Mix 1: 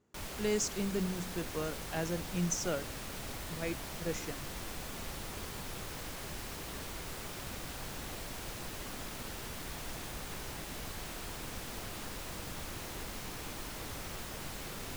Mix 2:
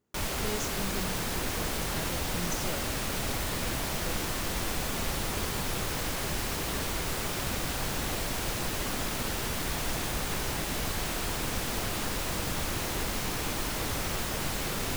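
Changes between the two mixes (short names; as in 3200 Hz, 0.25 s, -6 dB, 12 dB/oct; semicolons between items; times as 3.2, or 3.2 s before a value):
speech -5.0 dB; background +10.5 dB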